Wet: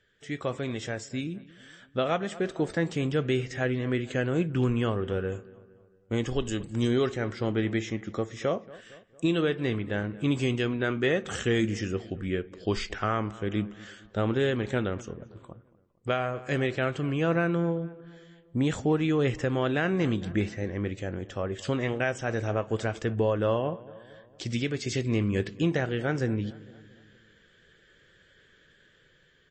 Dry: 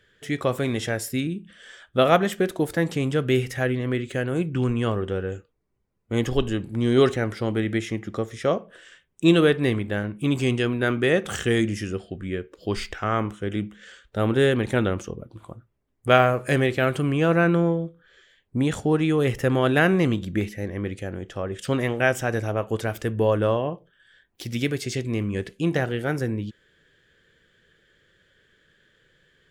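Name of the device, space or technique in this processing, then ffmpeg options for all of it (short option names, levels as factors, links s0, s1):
low-bitrate web radio: -filter_complex "[0:a]asplit=3[s0][s1][s2];[s0]afade=t=out:st=6.44:d=0.02[s3];[s1]bass=f=250:g=0,treble=f=4000:g=14,afade=t=in:st=6.44:d=0.02,afade=t=out:st=6.87:d=0.02[s4];[s2]afade=t=in:st=6.87:d=0.02[s5];[s3][s4][s5]amix=inputs=3:normalize=0,asplit=2[s6][s7];[s7]adelay=228,lowpass=f=2400:p=1,volume=0.0944,asplit=2[s8][s9];[s9]adelay=228,lowpass=f=2400:p=1,volume=0.51,asplit=2[s10][s11];[s11]adelay=228,lowpass=f=2400:p=1,volume=0.51,asplit=2[s12][s13];[s13]adelay=228,lowpass=f=2400:p=1,volume=0.51[s14];[s6][s8][s10][s12][s14]amix=inputs=5:normalize=0,dynaudnorm=f=440:g=9:m=3.35,alimiter=limit=0.376:level=0:latency=1:release=487,volume=0.447" -ar 22050 -c:a libmp3lame -b:a 32k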